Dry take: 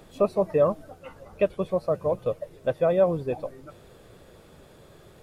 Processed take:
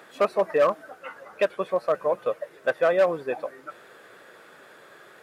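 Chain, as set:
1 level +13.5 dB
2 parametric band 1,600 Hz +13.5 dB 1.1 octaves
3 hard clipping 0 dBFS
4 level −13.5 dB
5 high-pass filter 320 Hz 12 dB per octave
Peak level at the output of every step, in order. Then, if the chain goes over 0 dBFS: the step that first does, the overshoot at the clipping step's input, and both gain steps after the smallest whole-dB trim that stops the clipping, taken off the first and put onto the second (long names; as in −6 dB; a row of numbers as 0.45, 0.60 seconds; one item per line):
+4.0, +6.0, 0.0, −13.5, −9.5 dBFS
step 1, 6.0 dB
step 1 +7.5 dB, step 4 −7.5 dB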